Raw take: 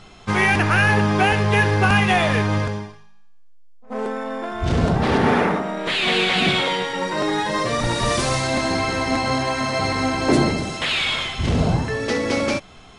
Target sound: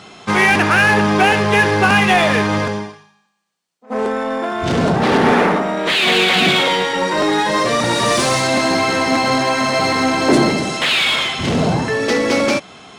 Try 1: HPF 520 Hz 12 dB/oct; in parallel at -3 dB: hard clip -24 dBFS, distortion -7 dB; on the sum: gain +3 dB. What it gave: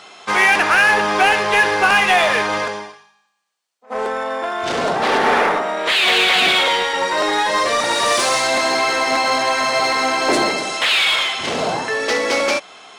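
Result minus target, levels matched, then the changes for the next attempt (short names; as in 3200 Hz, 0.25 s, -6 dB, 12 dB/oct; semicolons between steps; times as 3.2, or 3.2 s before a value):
125 Hz band -15.0 dB
change: HPF 170 Hz 12 dB/oct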